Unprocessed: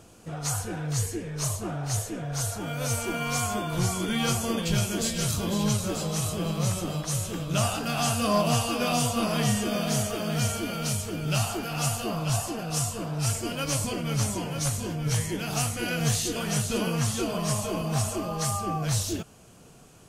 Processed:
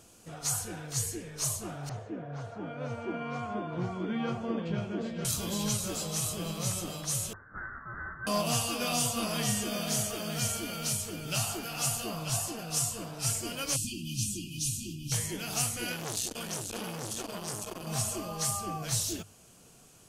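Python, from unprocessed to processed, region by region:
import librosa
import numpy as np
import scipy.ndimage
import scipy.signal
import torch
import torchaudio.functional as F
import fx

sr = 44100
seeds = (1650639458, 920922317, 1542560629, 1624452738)

y = fx.chain(x, sr, fx.bandpass_edges(low_hz=230.0, high_hz=2100.0),
    fx.tilt_eq(slope=-3.0), at=(1.89, 5.25))
y = fx.chain(y, sr, fx.steep_highpass(hz=1000.0, slope=48),
    fx.freq_invert(carrier_hz=2700), at=(7.33, 8.27))
y = fx.chain(y, sr, fx.brickwall_bandstop(low_hz=380.0, high_hz=2400.0),
    fx.high_shelf(hz=8900.0, db=-4.0), at=(13.76, 15.12))
y = fx.chain(y, sr, fx.notch(hz=2000.0, q=8.0),
    fx.transformer_sat(knee_hz=1300.0), at=(15.92, 17.87))
y = fx.high_shelf(y, sr, hz=3100.0, db=8.5)
y = fx.hum_notches(y, sr, base_hz=50, count=3)
y = y * 10.0 ** (-7.0 / 20.0)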